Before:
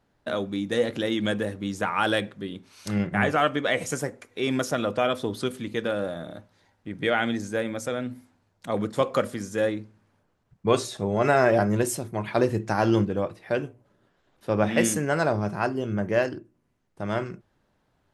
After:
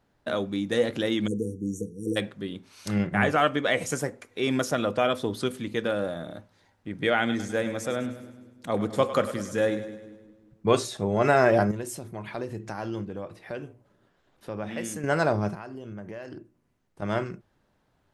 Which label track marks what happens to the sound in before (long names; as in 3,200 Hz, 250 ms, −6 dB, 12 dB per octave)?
1.270000	2.160000	time-frequency box erased 500–5,600 Hz
7.190000	10.710000	echo with a time of its own for lows and highs split 380 Hz, lows 180 ms, highs 102 ms, level −12 dB
11.710000	15.040000	downward compressor 2 to 1, threshold −38 dBFS
15.540000	17.020000	downward compressor 12 to 1, threshold −35 dBFS